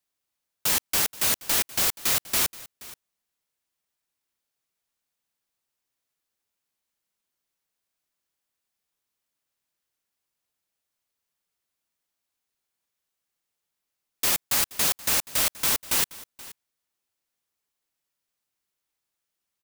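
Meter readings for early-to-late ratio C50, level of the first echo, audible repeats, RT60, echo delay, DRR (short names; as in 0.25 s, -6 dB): none, -19.5 dB, 1, none, 0.477 s, none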